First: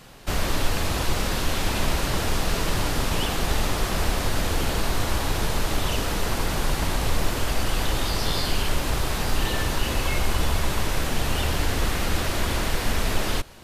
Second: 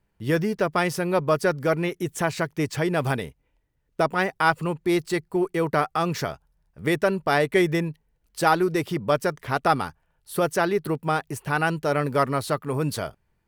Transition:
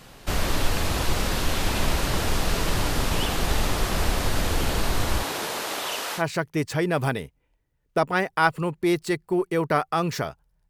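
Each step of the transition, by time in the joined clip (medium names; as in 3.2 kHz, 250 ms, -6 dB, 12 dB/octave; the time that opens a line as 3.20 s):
first
5.22–6.23 s: high-pass 260 Hz -> 730 Hz
6.19 s: go over to second from 2.22 s, crossfade 0.08 s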